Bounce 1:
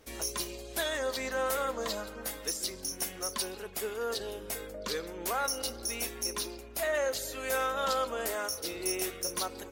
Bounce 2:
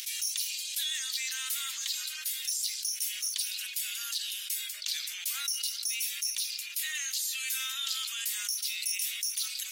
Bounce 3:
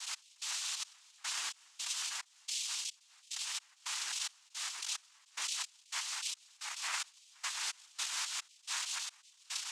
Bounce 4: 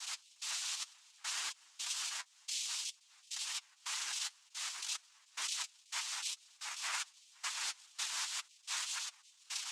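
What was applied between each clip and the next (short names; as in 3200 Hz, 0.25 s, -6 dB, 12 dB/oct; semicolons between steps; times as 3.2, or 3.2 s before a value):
upward compressor, threshold -50 dBFS; inverse Chebyshev high-pass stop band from 460 Hz, stop band 80 dB; fast leveller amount 70%
limiter -26 dBFS, peak gain reduction 9 dB; step gate "x..xxx...xx..xx" 109 bpm -24 dB; noise vocoder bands 4
flange 2 Hz, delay 5.3 ms, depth 6.3 ms, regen +30%; gain +2.5 dB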